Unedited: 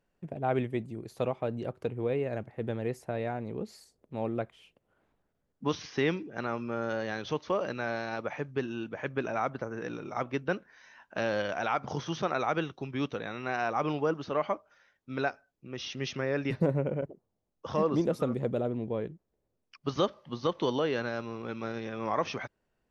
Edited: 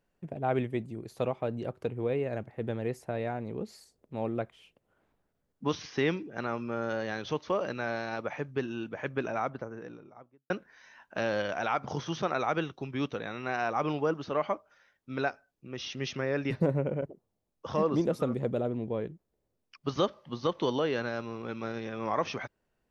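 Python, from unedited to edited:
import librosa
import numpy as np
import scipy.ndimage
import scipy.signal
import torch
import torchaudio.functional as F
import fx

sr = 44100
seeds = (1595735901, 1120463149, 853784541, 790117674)

y = fx.studio_fade_out(x, sr, start_s=9.19, length_s=1.31)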